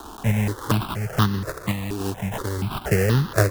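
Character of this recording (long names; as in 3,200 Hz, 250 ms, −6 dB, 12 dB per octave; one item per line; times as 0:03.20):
a quantiser's noise floor 6 bits, dither triangular
sample-and-hold tremolo
aliases and images of a low sample rate 2,300 Hz, jitter 20%
notches that jump at a steady rate 4.2 Hz 550–2,300 Hz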